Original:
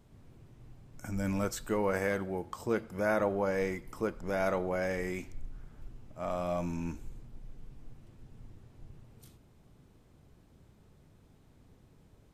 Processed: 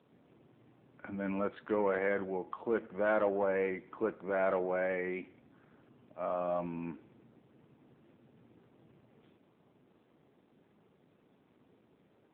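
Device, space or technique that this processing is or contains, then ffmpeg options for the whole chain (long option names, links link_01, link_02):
telephone: -af "highpass=250,lowpass=3200,asoftclip=type=tanh:threshold=-22dB,volume=2dB" -ar 8000 -c:a libopencore_amrnb -b:a 7400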